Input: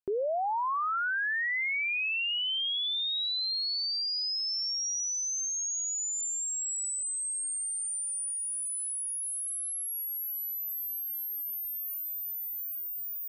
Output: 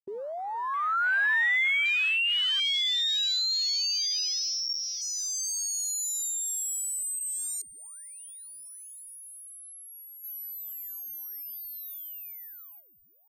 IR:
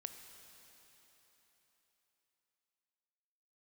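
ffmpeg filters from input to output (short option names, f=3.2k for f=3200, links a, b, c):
-filter_complex "[0:a]afwtdn=0.02,asplit=3[a][b][c];[a]afade=t=out:st=10.23:d=0.02[d];[b]acontrast=46,afade=t=in:st=10.23:d=0.02,afade=t=out:st=12.79:d=0.02[e];[c]afade=t=in:st=12.79:d=0.02[f];[d][e][f]amix=inputs=3:normalize=0,aeval=exprs='sgn(val(0))*max(abs(val(0))-0.001,0)':c=same,dynaudnorm=f=140:g=13:m=15dB,adynamicequalizer=threshold=0.00708:dfrequency=2000:dqfactor=0.7:tfrequency=2000:tqfactor=0.7:attack=5:release=100:ratio=0.375:range=2:mode=cutabove:tftype=highshelf,volume=-6.5dB"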